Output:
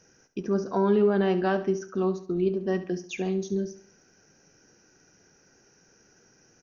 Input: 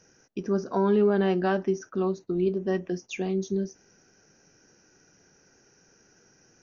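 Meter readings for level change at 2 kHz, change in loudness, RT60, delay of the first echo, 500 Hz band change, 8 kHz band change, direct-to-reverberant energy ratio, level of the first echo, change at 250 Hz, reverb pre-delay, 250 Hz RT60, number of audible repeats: 0.0 dB, 0.0 dB, no reverb, 70 ms, 0.0 dB, no reading, no reverb, -13.5 dB, 0.0 dB, no reverb, no reverb, 3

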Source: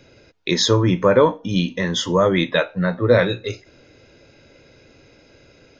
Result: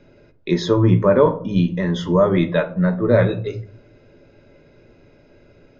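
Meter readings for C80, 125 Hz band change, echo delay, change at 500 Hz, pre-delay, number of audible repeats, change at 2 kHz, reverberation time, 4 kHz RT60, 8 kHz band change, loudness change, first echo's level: 20.5 dB, +3.5 dB, no echo, +0.5 dB, 3 ms, no echo, -4.5 dB, 0.50 s, 0.30 s, no reading, +0.5 dB, no echo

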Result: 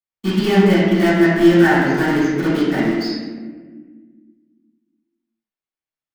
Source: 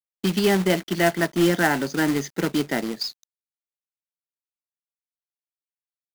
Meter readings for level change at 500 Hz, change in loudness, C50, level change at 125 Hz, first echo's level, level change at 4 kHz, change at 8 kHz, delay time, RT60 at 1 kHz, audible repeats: +6.5 dB, +7.0 dB, -1.5 dB, +8.0 dB, no echo, +1.5 dB, no reading, no echo, 1.3 s, no echo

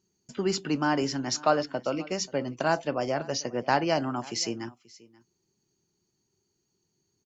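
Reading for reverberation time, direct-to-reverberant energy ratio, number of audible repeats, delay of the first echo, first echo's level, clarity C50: no reverb, no reverb, 1, 533 ms, -22.5 dB, no reverb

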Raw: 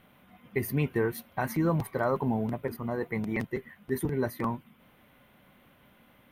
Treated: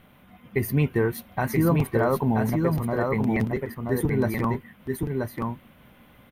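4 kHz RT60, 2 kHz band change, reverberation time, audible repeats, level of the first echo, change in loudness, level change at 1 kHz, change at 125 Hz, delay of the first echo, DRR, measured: no reverb, +5.0 dB, no reverb, 1, -3.5 dB, +5.5 dB, +5.0 dB, +8.0 dB, 979 ms, no reverb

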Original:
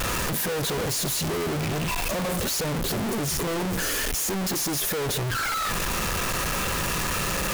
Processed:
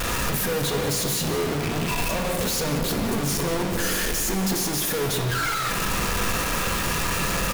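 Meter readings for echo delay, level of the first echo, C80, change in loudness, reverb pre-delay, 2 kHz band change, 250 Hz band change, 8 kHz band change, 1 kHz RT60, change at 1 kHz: 183 ms, -13.0 dB, 6.5 dB, +1.5 dB, 4 ms, +2.0 dB, +2.5 dB, +1.0 dB, 2.4 s, +2.0 dB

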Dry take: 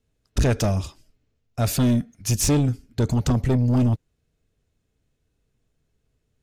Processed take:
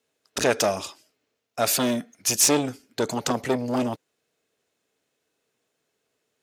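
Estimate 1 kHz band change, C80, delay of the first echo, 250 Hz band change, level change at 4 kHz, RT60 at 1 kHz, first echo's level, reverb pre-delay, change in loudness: +5.0 dB, no reverb, no echo, -4.5 dB, +5.5 dB, no reverb, no echo, no reverb, -1.5 dB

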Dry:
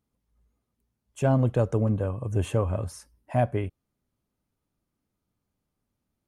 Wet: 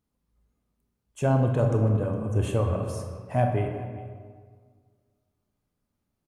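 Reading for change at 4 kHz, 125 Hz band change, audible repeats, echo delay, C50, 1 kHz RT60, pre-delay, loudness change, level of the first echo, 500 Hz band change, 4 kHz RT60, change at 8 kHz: 0.0 dB, +1.5 dB, 1, 411 ms, 4.0 dB, 1.8 s, 22 ms, +0.5 dB, -19.5 dB, +1.0 dB, 1.2 s, 0.0 dB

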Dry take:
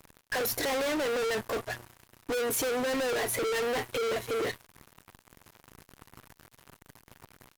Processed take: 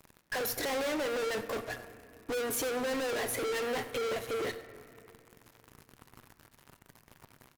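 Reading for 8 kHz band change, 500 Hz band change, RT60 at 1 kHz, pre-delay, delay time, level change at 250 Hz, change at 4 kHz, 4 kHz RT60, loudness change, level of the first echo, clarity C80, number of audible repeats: -3.5 dB, -3.0 dB, 2.2 s, 4 ms, 89 ms, -2.5 dB, -3.5 dB, 1.7 s, -3.5 dB, -18.0 dB, 12.0 dB, 1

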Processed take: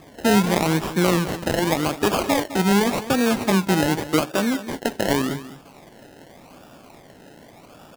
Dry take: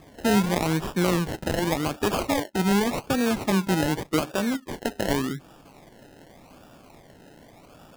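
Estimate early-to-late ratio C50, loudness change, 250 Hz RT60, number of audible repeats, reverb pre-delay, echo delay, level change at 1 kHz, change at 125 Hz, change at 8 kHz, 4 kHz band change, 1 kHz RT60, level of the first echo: no reverb, +4.0 dB, no reverb, 1, no reverb, 208 ms, +4.5 dB, +3.0 dB, +4.5 dB, +4.5 dB, no reverb, -14.0 dB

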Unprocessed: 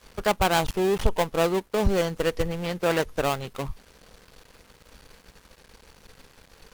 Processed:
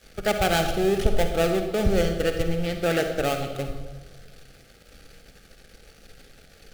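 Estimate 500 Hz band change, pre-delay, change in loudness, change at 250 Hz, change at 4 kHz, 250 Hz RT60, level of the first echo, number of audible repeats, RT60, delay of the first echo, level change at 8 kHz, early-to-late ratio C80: +1.0 dB, 37 ms, +1.0 dB, +2.0 dB, +1.0 dB, 1.5 s, no echo, no echo, 1.4 s, no echo, +1.0 dB, 8.5 dB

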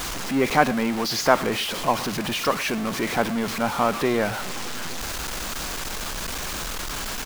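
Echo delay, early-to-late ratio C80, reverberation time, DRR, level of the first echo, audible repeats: 111 ms, no reverb, no reverb, no reverb, -20.0 dB, 1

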